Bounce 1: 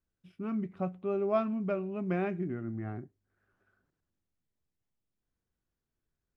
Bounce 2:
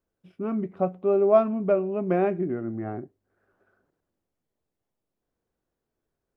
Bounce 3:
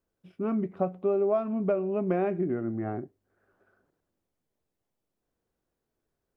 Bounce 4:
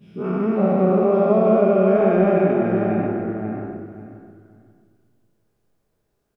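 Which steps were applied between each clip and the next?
bell 540 Hz +13 dB 2.4 oct; gain -1 dB
compressor 12:1, threshold -22 dBFS, peak gain reduction 10.5 dB
spectral dilation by 0.48 s; feedback echo 0.537 s, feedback 20%, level -4.5 dB; shoebox room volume 1800 m³, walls mixed, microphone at 1.3 m

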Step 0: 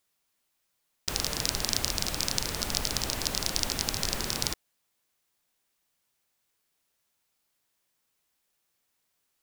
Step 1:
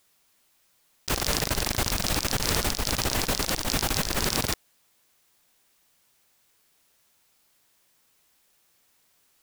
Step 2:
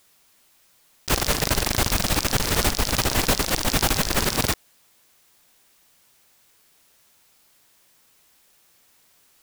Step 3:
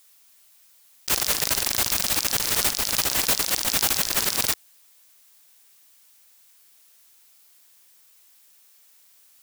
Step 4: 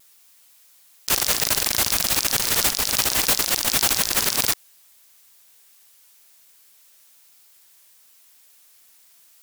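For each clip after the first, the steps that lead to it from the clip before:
negative-ratio compressor -34 dBFS, ratio -0.5; gain +7.5 dB
limiter -14 dBFS, peak gain reduction 10 dB; gain +6.5 dB
tilt +2.5 dB/oct; gain -5 dB
vibrato 1 Hz 26 cents; gain +2.5 dB

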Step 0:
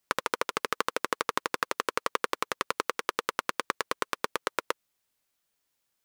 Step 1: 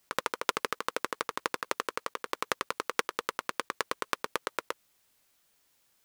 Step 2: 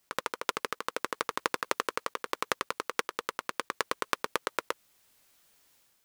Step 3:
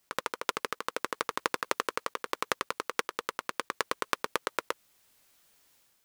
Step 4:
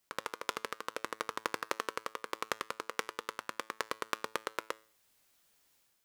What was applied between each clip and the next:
negative-ratio compressor -32 dBFS, ratio -0.5; gain +3 dB
AGC gain up to 7 dB; gain -2 dB
nothing audible
resonator 110 Hz, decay 0.46 s, harmonics all, mix 40%; gain -1.5 dB

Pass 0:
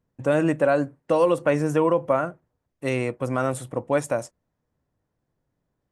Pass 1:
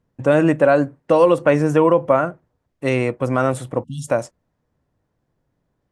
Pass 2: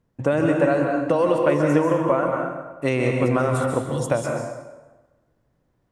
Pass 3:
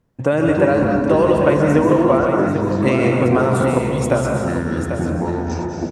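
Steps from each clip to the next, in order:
spectral delete 3.84–4.08, 260–2700 Hz; high shelf 8300 Hz -10 dB; gain +6 dB
compressor, threshold -17 dBFS, peak gain reduction 8.5 dB; plate-style reverb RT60 1.2 s, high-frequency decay 0.7×, pre-delay 0.12 s, DRR 1 dB
echoes that change speed 0.18 s, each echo -7 st, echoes 2, each echo -6 dB; on a send: echo 0.793 s -8.5 dB; on the sum: gain +3.5 dB

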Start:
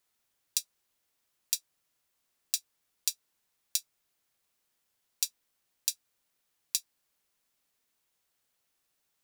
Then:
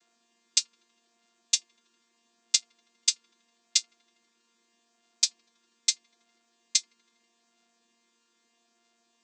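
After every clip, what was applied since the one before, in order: chord vocoder bare fifth, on A#3; high shelf 2700 Hz +8.5 dB; dark delay 81 ms, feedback 76%, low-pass 670 Hz, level -11.5 dB; gain +3 dB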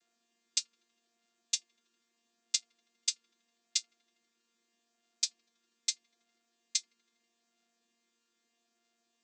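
notch 990 Hz, Q 5.1; gain -7.5 dB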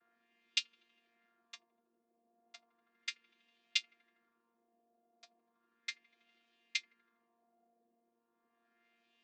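LFO low-pass sine 0.35 Hz 620–2900 Hz; gain +2.5 dB

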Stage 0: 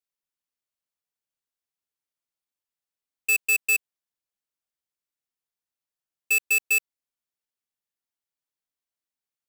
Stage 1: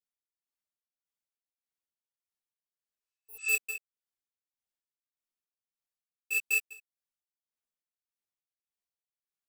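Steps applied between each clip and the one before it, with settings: spectral repair 3.01–3.49, 970–9000 Hz both; tremolo 1.7 Hz, depth 95%; chorus voices 6, 1.1 Hz, delay 14 ms, depth 3 ms; gain -2 dB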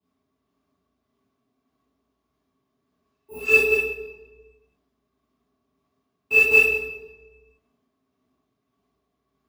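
limiter -21 dBFS, peak gain reduction 4 dB; small resonant body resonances 270/400/630/1100 Hz, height 18 dB, ringing for 65 ms; reverb RT60 1.2 s, pre-delay 3 ms, DRR -11.5 dB; gain -6 dB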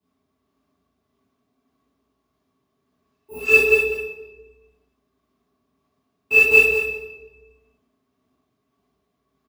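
echo 0.198 s -9.5 dB; gain +2.5 dB

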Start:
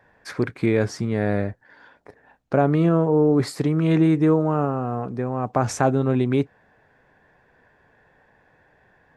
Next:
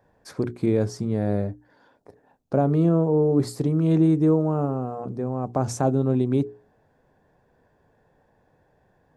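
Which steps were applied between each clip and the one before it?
bell 2000 Hz -14 dB 1.8 oct; notches 60/120/180/240/300/360/420 Hz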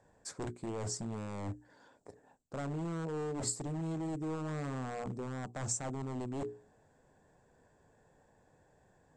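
reverse; compressor 20:1, threshold -28 dBFS, peak gain reduction 14.5 dB; reverse; wavefolder -28.5 dBFS; synth low-pass 7700 Hz, resonance Q 7.8; gain -4 dB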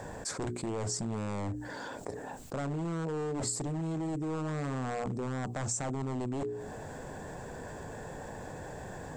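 fast leveller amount 70%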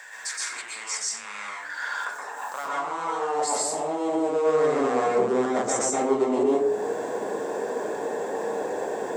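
high-pass sweep 1900 Hz -> 410 Hz, 1.09–4.71; plate-style reverb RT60 0.57 s, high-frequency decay 0.65×, pre-delay 0.11 s, DRR -5 dB; gain +4 dB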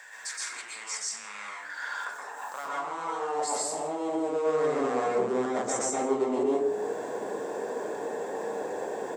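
echo 0.162 s -17 dB; gain -4.5 dB

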